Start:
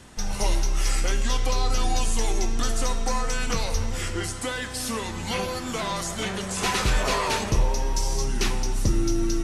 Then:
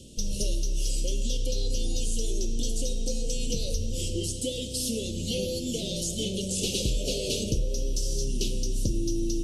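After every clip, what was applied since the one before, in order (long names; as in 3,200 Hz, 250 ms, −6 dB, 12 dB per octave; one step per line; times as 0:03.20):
Chebyshev band-stop filter 560–2,900 Hz, order 4
downward compressor 3 to 1, threshold −26 dBFS, peak gain reduction 7.5 dB
level +1.5 dB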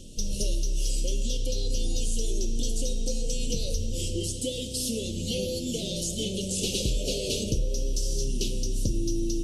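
echo ahead of the sound 212 ms −19.5 dB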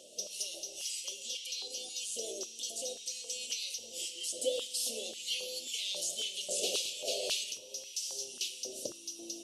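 on a send at −11 dB: convolution reverb RT60 0.85 s, pre-delay 3 ms
on the sum: high-pass on a step sequencer 3.7 Hz 630–2,100 Hz
level −3.5 dB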